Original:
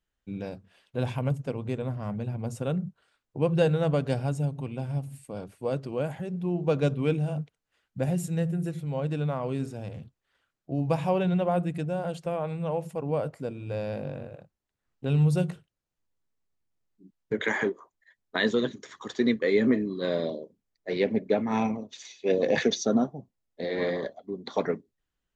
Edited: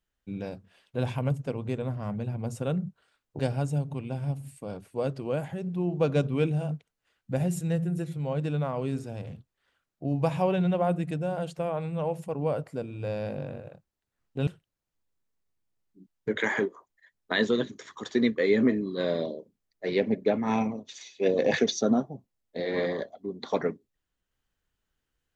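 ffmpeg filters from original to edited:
-filter_complex "[0:a]asplit=3[a][b][c];[a]atrim=end=3.392[d];[b]atrim=start=4.058:end=15.142[e];[c]atrim=start=15.508[f];[d][e]acrossfade=d=0.004:c1=hsin:c2=hsin[g];[g][f]acrossfade=d=0.004:c1=hsin:c2=hsin"

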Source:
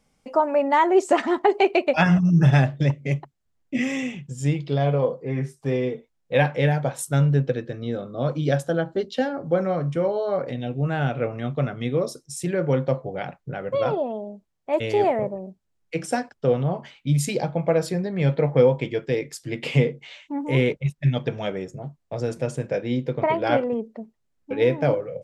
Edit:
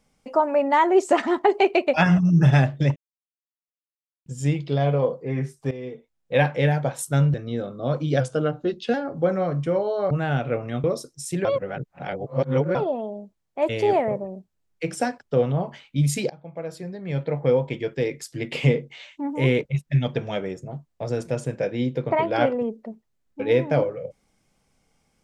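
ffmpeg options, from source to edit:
-filter_complex "[0:a]asplit=12[a][b][c][d][e][f][g][h][i][j][k][l];[a]atrim=end=2.96,asetpts=PTS-STARTPTS,afade=t=out:st=2.956:d=0.004:c=hsin[m];[b]atrim=start=2.96:end=4.26,asetpts=PTS-STARTPTS,volume=0[n];[c]atrim=start=4.26:end=5.71,asetpts=PTS-STARTPTS,afade=t=in:d=0.004:c=hsin,afade=t=out:st=1.446:d=0.004:c=hsin:silence=0.188365[o];[d]atrim=start=5.71:end=7.342,asetpts=PTS-STARTPTS,afade=t=in:d=0.68:silence=0.188365[p];[e]atrim=start=7.688:end=8.554[q];[f]atrim=start=8.55:end=9.23,asetpts=PTS-STARTPTS,asetrate=40572,aresample=44100[r];[g]atrim=start=9.226:end=10.402[s];[h]atrim=start=10.808:end=11.542[t];[i]atrim=start=11.948:end=12.562[u];[j]atrim=start=12.558:end=13.862,asetpts=PTS-STARTPTS,areverse[v];[k]atrim=start=13.858:end=17.41,asetpts=PTS-STARTPTS,afade=t=out:st=3.548:d=0.004:c=hsin:silence=0.0841395[w];[l]atrim=start=17.41,asetpts=PTS-STARTPTS,afade=t=in:d=1.87:silence=0.0841395[x];[m][n][o][p]concat=n=4:v=0:a=1[y];[y][q]acrossfade=d=0.004:c1=hsin:c2=hsin[z];[z][r]acrossfade=d=0.004:c1=hsin:c2=hsin[aa];[aa][s]acrossfade=d=0.004:c1=hsin:c2=hsin[ab];[ab][t]acrossfade=d=0.004:c1=hsin:c2=hsin[ac];[ac][u]acrossfade=d=0.004:c1=hsin:c2=hsin[ad];[ad][v]acrossfade=d=0.004:c1=hsin:c2=hsin[ae];[w][x]concat=n=2:v=0:a=1[af];[ae][af]acrossfade=d=0.004:c1=hsin:c2=hsin"

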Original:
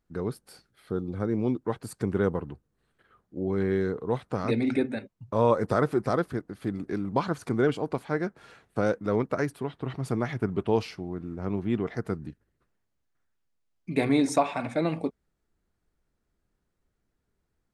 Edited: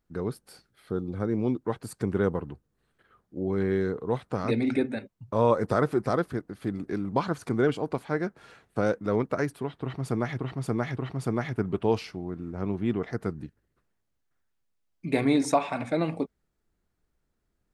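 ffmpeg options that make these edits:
-filter_complex "[0:a]asplit=3[a][b][c];[a]atrim=end=10.392[d];[b]atrim=start=9.808:end=10.392[e];[c]atrim=start=9.808[f];[d][e]acrossfade=d=0.004:c1=hsin:c2=hsin[g];[g][f]acrossfade=d=0.004:c1=hsin:c2=hsin"

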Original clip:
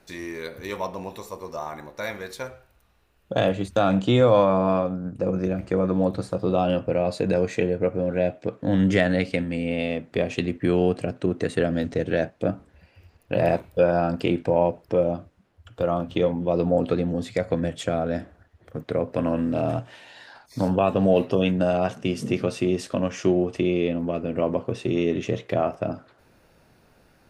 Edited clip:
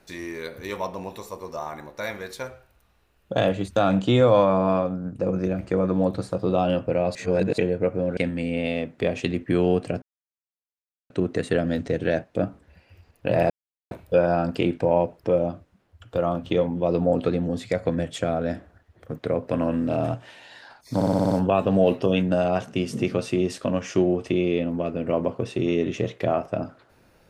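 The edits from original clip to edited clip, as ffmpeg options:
-filter_complex "[0:a]asplit=12[a][b][c][d][e][f][g][h][i][j][k][l];[a]atrim=end=7.152[m];[b]atrim=start=7.148:end=7.582,asetpts=PTS-STARTPTS,areverse[n];[c]atrim=start=7.578:end=8.172[o];[d]atrim=start=9.308:end=11.16,asetpts=PTS-STARTPTS,afade=t=out:st=1.848:d=0.004:c=hsin,apad=pad_dur=1.08[p];[e]atrim=start=11.16:end=13.56,asetpts=PTS-STARTPTS,afade=t=in:d=0.004:c=hsin,afade=t=out:st=2.396:d=0.004:c=hsin,apad=pad_dur=0.41[q];[f]atrim=start=13.56:end=20.662,asetpts=PTS-STARTPTS,afade=t=in:d=0.004:c=hsin[r];[g]atrim=start=20.598:end=20.662[s];[h]atrim=start=20.598:end=20.662[t];[i]atrim=start=20.598:end=20.662[u];[j]atrim=start=20.598:end=20.662[v];[k]atrim=start=20.598:end=20.662[w];[l]atrim=start=20.598[x];[m][n]acrossfade=d=0.004:c1=hsin:c2=hsin[y];[y][o]acrossfade=d=0.004:c1=hsin:c2=hsin[z];[p][q][r]concat=n=3:v=0:a=1[aa];[z][aa]acrossfade=d=0.004:c1=hsin:c2=hsin[ab];[ab][s]acrossfade=d=0.004:c1=hsin:c2=hsin[ac];[ac][t]acrossfade=d=0.004:c1=hsin:c2=hsin[ad];[ad][u]acrossfade=d=0.004:c1=hsin:c2=hsin[ae];[ae][v]acrossfade=d=0.004:c1=hsin:c2=hsin[af];[af][w]acrossfade=d=0.004:c1=hsin:c2=hsin[ag];[ag][x]acrossfade=d=0.004:c1=hsin:c2=hsin"

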